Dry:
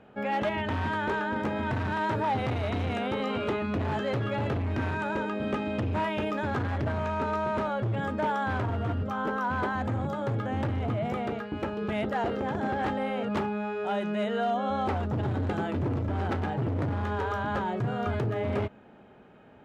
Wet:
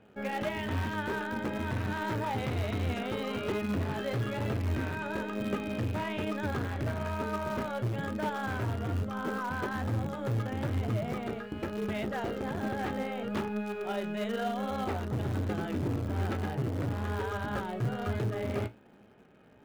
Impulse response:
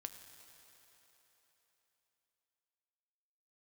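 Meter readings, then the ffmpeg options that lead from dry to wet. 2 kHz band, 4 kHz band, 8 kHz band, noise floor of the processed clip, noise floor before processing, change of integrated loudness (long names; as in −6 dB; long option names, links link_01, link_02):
−3.5 dB, −2.0 dB, can't be measured, −57 dBFS, −53 dBFS, −3.5 dB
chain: -filter_complex "[0:a]equalizer=frequency=860:width=1.2:gain=-4.5,flanger=delay=9.1:depth=8.9:regen=58:speed=1.1:shape=sinusoidal,asplit=2[link_01][link_02];[link_02]acrusher=bits=6:dc=4:mix=0:aa=0.000001,volume=-12dB[link_03];[link_01][link_03]amix=inputs=2:normalize=0"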